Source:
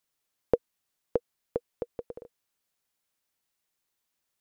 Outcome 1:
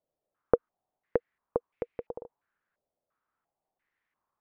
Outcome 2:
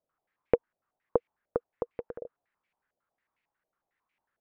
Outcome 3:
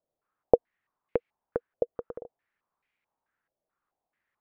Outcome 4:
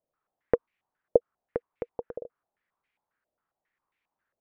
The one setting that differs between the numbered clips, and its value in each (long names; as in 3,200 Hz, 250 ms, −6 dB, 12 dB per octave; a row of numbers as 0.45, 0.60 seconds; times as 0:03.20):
low-pass on a step sequencer, speed: 2.9, 11, 4.6, 7.4 Hertz